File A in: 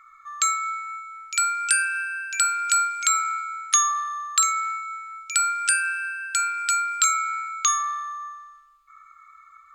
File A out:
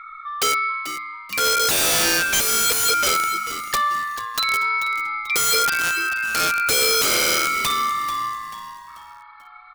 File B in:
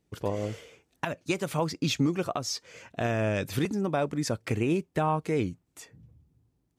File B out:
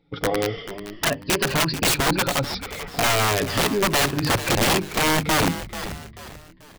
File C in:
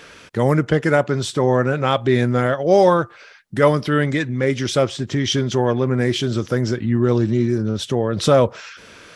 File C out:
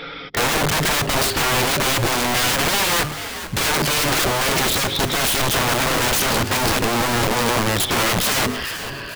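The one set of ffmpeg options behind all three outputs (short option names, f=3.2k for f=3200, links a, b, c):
-filter_complex "[0:a]afftfilt=real='re*pow(10,13/40*sin(2*PI*(1.4*log(max(b,1)*sr/1024/100)/log(2)-(-0.39)*(pts-256)/sr)))':imag='im*pow(10,13/40*sin(2*PI*(1.4*log(max(b,1)*sr/1024/100)/log(2)-(-0.39)*(pts-256)/sr)))':win_size=1024:overlap=0.75,bandreject=f=50:t=h:w=6,bandreject=f=100:t=h:w=6,bandreject=f=150:t=h:w=6,bandreject=f=200:t=h:w=6,bandreject=f=250:t=h:w=6,bandreject=f=300:t=h:w=6,bandreject=f=350:t=h:w=6,bandreject=f=400:t=h:w=6,adynamicequalizer=threshold=0.00891:dfrequency=100:dqfactor=5.2:tfrequency=100:tqfactor=5.2:attack=5:release=100:ratio=0.375:range=2:mode=boostabove:tftype=bell,acompressor=threshold=-17dB:ratio=3,aresample=11025,asoftclip=type=tanh:threshold=-17.5dB,aresample=44100,aecho=1:1:7.2:0.46,aeval=exprs='(mod(13.3*val(0)+1,2)-1)/13.3':c=same,asplit=2[a][b];[b]asplit=4[c][d][e][f];[c]adelay=438,afreqshift=-110,volume=-12dB[g];[d]adelay=876,afreqshift=-220,volume=-20dB[h];[e]adelay=1314,afreqshift=-330,volume=-27.9dB[i];[f]adelay=1752,afreqshift=-440,volume=-35.9dB[j];[g][h][i][j]amix=inputs=4:normalize=0[k];[a][k]amix=inputs=2:normalize=0,volume=8dB"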